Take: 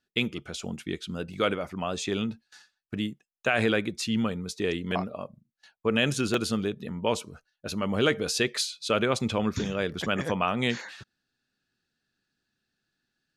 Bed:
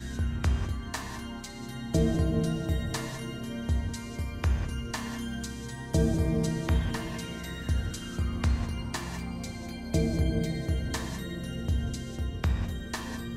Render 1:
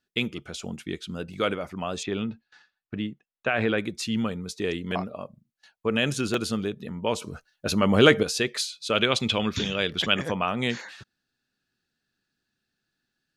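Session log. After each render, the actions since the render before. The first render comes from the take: 2.03–3.78 s: low-pass 3.1 kHz; 7.22–8.23 s: gain +7.5 dB; 8.95–10.19 s: peaking EQ 3.2 kHz +12 dB 1.1 oct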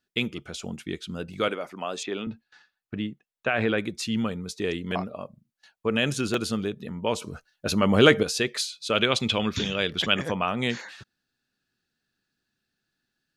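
1.48–2.27 s: high-pass 280 Hz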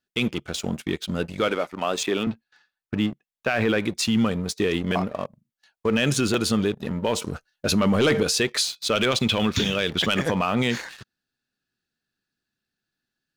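waveshaping leveller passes 2; peak limiter -13 dBFS, peak gain reduction 8.5 dB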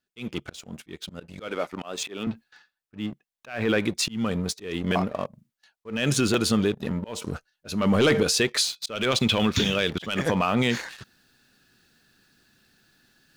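slow attack 274 ms; reverse; upward compressor, threshold -44 dBFS; reverse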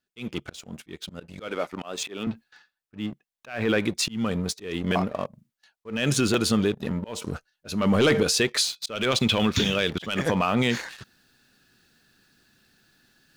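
no audible change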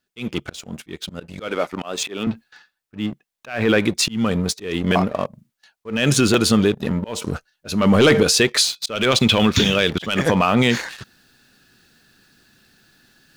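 trim +6.5 dB

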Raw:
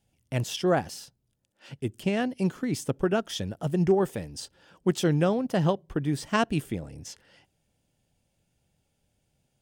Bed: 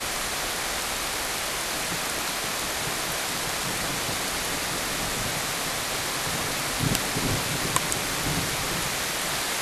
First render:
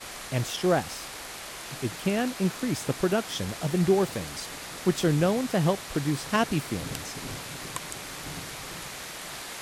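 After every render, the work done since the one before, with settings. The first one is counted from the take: add bed -11 dB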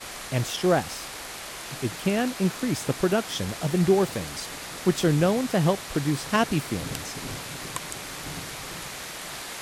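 trim +2 dB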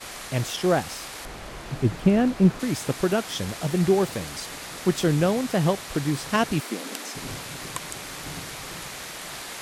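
1.25–2.60 s: tilt EQ -3 dB/octave; 6.60–7.15 s: brick-wall FIR high-pass 190 Hz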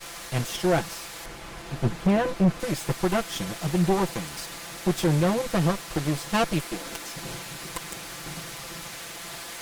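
comb filter that takes the minimum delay 5.9 ms; hard clipper -15.5 dBFS, distortion -15 dB

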